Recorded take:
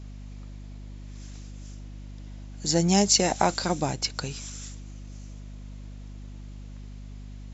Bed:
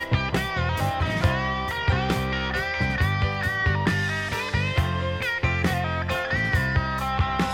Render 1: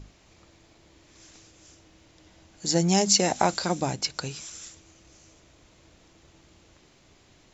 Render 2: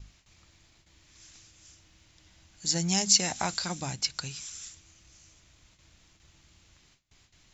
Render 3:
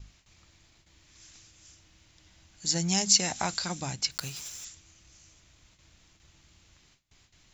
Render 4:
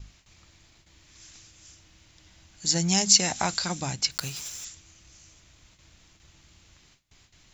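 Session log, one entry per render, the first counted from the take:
mains-hum notches 50/100/150/200/250 Hz
noise gate with hold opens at −47 dBFS; parametric band 450 Hz −13.5 dB 2.4 octaves
0:04.11–0:04.66: one scale factor per block 3 bits
level +3.5 dB

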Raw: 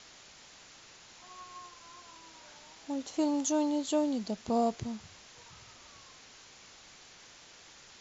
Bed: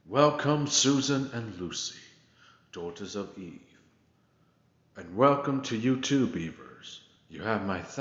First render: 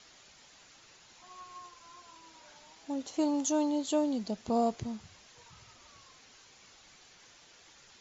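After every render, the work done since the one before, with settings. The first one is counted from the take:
broadband denoise 6 dB, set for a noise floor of −55 dBFS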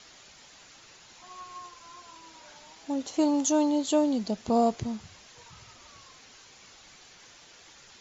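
level +5 dB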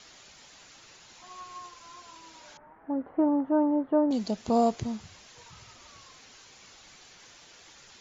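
0:02.57–0:04.11: Butterworth low-pass 1,700 Hz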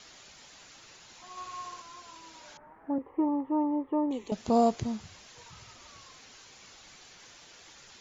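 0:01.31–0:01.82: flutter between parallel walls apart 10.3 metres, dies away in 1 s
0:02.98–0:04.32: phaser with its sweep stopped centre 1,000 Hz, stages 8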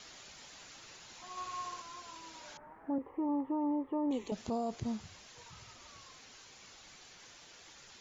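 speech leveller 0.5 s
brickwall limiter −27.5 dBFS, peak gain reduction 9.5 dB

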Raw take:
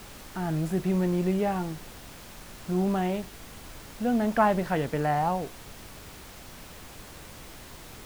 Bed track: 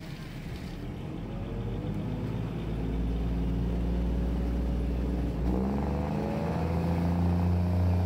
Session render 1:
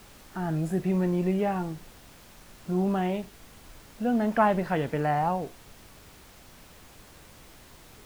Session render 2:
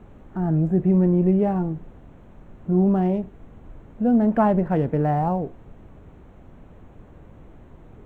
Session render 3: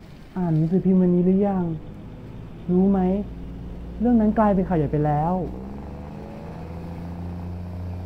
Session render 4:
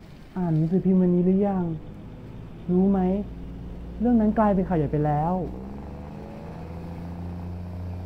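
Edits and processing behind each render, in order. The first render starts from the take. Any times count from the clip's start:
noise reduction from a noise print 6 dB
adaptive Wiener filter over 9 samples; tilt shelving filter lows +9 dB
mix in bed track −6 dB
level −2 dB

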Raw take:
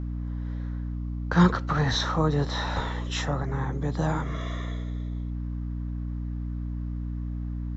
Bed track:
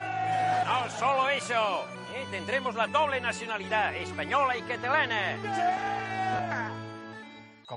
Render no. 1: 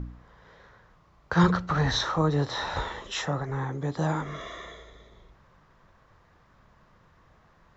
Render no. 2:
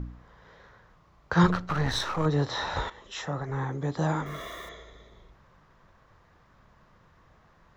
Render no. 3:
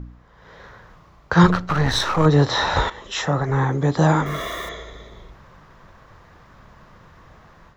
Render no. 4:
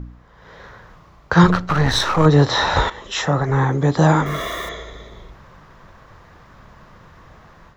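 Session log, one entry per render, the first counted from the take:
hum removal 60 Hz, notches 5
0:01.46–0:02.26: gain on one half-wave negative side −7 dB; 0:02.90–0:03.60: fade in linear, from −13.5 dB; 0:04.26–0:04.69: spike at every zero crossing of −44.5 dBFS
automatic gain control gain up to 11.5 dB
level +2.5 dB; brickwall limiter −2 dBFS, peak gain reduction 2.5 dB

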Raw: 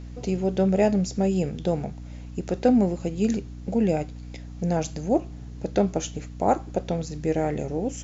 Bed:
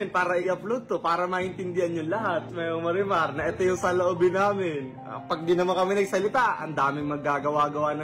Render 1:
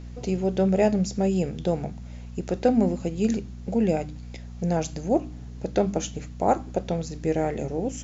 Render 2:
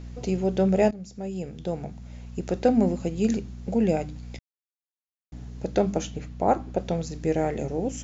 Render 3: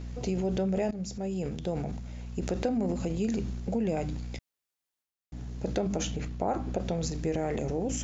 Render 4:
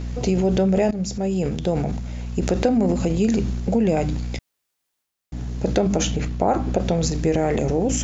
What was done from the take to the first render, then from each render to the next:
hum removal 50 Hz, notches 6
0:00.91–0:02.49: fade in, from −18 dB; 0:04.39–0:05.32: silence; 0:06.03–0:06.79: high-frequency loss of the air 89 metres
transient designer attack −1 dB, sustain +8 dB; downward compressor 4 to 1, threshold −27 dBFS, peak gain reduction 10 dB
level +10 dB

